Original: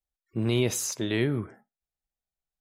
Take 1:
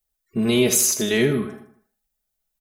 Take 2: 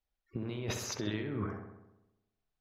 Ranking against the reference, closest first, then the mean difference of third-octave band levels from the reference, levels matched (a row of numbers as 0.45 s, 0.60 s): 1, 2; 5.5 dB, 8.5 dB